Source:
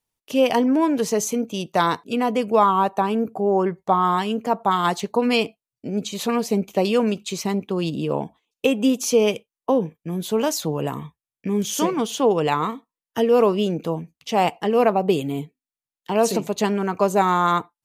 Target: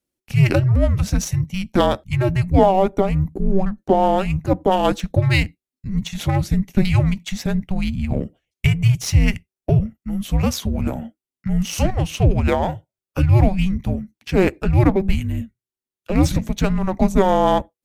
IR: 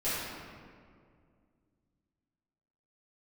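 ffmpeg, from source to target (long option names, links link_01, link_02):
-filter_complex "[0:a]afreqshift=-380,asplit=2[link_01][link_02];[link_02]adynamicsmooth=sensitivity=5.5:basefreq=800,volume=-1.5dB[link_03];[link_01][link_03]amix=inputs=2:normalize=0,volume=-2dB"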